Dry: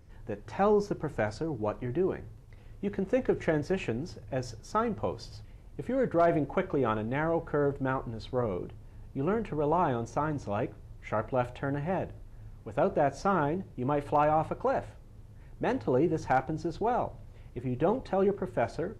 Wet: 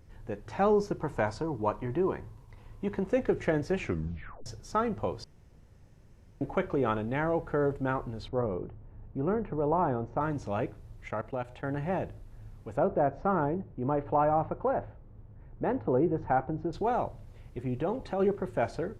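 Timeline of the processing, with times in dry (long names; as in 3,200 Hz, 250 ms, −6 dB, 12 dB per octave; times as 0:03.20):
0:00.99–0:03.08: parametric band 990 Hz +12 dB 0.3 octaves
0:03.78: tape stop 0.68 s
0:05.24–0:06.41: fill with room tone
0:08.28–0:10.21: low-pass filter 1,400 Hz
0:11.08–0:11.76: output level in coarse steps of 16 dB
0:12.77–0:16.73: low-pass filter 1,400 Hz
0:17.77–0:18.20: downward compressor 1.5 to 1, threshold −33 dBFS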